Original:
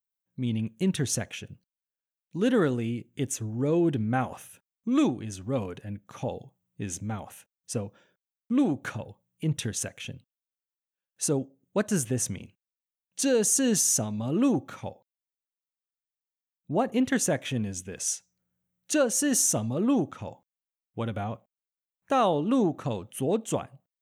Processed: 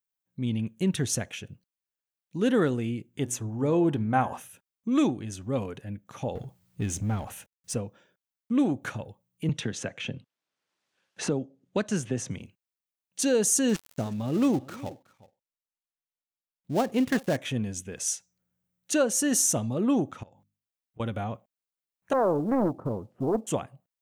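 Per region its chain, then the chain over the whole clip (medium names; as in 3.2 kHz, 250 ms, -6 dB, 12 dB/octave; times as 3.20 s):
3.14–4.40 s: peaking EQ 910 Hz +7 dB 0.81 oct + de-hum 121.2 Hz, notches 14
6.35–7.75 s: companding laws mixed up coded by mu + bass shelf 99 Hz +11 dB
9.49–12.31 s: band-pass 110–5300 Hz + three bands compressed up and down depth 70%
13.69–17.37 s: dead-time distortion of 0.12 ms + delay 369 ms -20 dB
20.23–21.00 s: hum notches 50/100/150/200/250/300 Hz + compression 12:1, threshold -51 dBFS
22.13–23.47 s: low-pass 1 kHz 24 dB/octave + companded quantiser 8-bit + loudspeaker Doppler distortion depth 0.63 ms
whole clip: none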